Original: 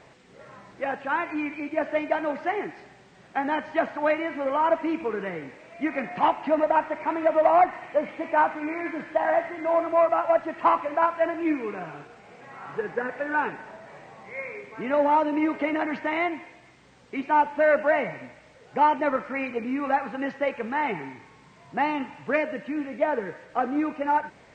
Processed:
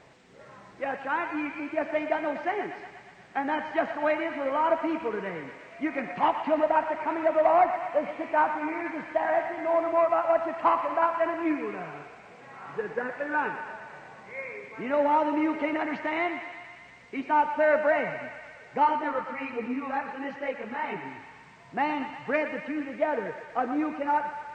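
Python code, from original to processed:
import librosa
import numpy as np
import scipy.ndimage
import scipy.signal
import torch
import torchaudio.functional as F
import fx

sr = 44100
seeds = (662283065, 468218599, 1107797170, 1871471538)

y = fx.chorus_voices(x, sr, voices=2, hz=1.4, base_ms=22, depth_ms=3.0, mix_pct=60, at=(18.84, 21.04), fade=0.02)
y = fx.echo_thinned(y, sr, ms=119, feedback_pct=75, hz=540.0, wet_db=-9)
y = y * librosa.db_to_amplitude(-2.5)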